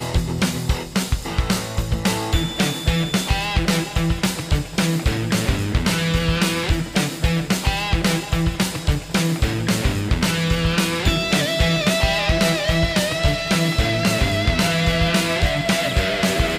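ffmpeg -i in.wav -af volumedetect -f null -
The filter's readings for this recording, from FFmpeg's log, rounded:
mean_volume: -19.8 dB
max_volume: -7.4 dB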